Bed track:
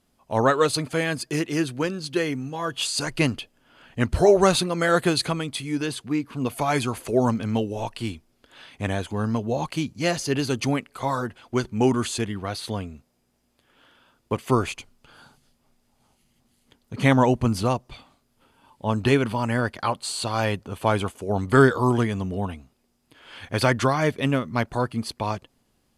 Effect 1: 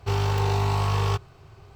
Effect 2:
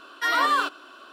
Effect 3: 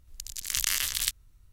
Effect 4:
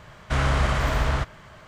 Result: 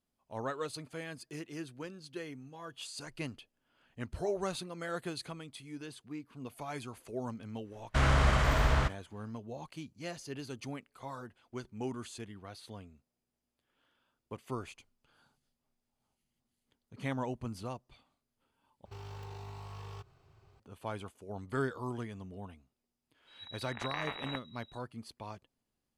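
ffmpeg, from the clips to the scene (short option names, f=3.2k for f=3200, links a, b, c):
-filter_complex "[0:a]volume=-18dB[a];[4:a]agate=range=-33dB:threshold=-36dB:ratio=3:release=100:detection=peak[b];[1:a]alimiter=limit=-24dB:level=0:latency=1:release=116[c];[3:a]lowpass=f=3.3k:t=q:w=0.5098,lowpass=f=3.3k:t=q:w=0.6013,lowpass=f=3.3k:t=q:w=0.9,lowpass=f=3.3k:t=q:w=2.563,afreqshift=-3900[d];[a]asplit=2[e][f];[e]atrim=end=18.854[g];[c]atrim=end=1.75,asetpts=PTS-STARTPTS,volume=-14.5dB[h];[f]atrim=start=20.596[i];[b]atrim=end=1.67,asetpts=PTS-STARTPTS,volume=-4dB,afade=t=in:d=0.004:c=hsin,afade=t=out:st=1.666:d=0.004:c=hsin,adelay=7640[j];[d]atrim=end=1.52,asetpts=PTS-STARTPTS,volume=-5dB,afade=t=in:d=0.004:c=hsin,afade=t=out:st=1.516:d=0.004:c=hsin,adelay=23270[k];[g][h]acrossfade=d=0.004:c1=hsin:c2=hsin[l];[l][i]acrossfade=d=0.004:c1=hsin:c2=hsin[m];[m][j][k]amix=inputs=3:normalize=0"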